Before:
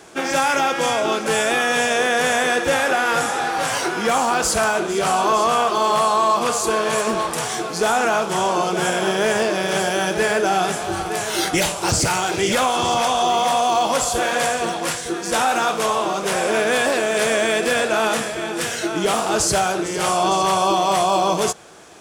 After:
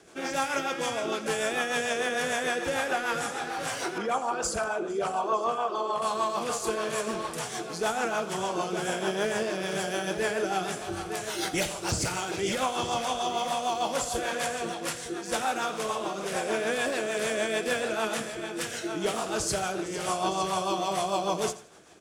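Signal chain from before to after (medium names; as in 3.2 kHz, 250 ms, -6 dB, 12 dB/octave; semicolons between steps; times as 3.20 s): 3.98–6.02 s: resonances exaggerated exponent 1.5; rotary cabinet horn 6.7 Hz; feedback delay 85 ms, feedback 28%, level -16 dB; trim -7.5 dB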